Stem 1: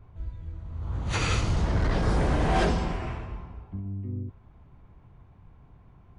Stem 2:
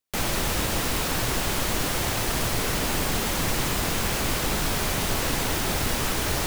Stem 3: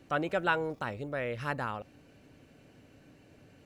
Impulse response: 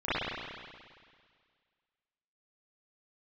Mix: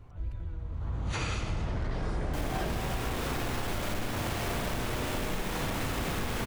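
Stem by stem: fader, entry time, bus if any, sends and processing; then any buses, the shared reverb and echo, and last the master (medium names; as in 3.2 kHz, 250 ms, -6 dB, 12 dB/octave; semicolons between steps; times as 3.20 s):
-0.5 dB, 0.00 s, send -16.5 dB, none
-9.0 dB, 2.20 s, send -9.5 dB, square wave that keeps the level
-16.0 dB, 0.00 s, no send, compressor with a negative ratio -41 dBFS, ratio -1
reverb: on, RT60 1.9 s, pre-delay 33 ms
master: compression 6:1, threshold -29 dBFS, peak gain reduction 13 dB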